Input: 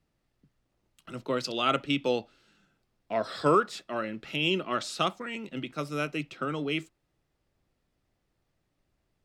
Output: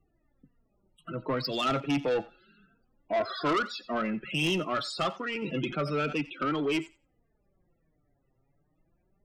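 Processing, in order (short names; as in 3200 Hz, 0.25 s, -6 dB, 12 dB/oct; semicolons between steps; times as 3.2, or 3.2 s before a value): in parallel at -2 dB: limiter -20.5 dBFS, peak gain reduction 9.5 dB; on the sum: flange 0.3 Hz, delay 2.5 ms, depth 5.2 ms, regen +36%; loudest bins only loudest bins 32; soft clip -27 dBFS, distortion -9 dB; thinning echo 89 ms, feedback 16%, high-pass 720 Hz, level -17 dB; 5.42–6.13 fast leveller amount 50%; gain +4 dB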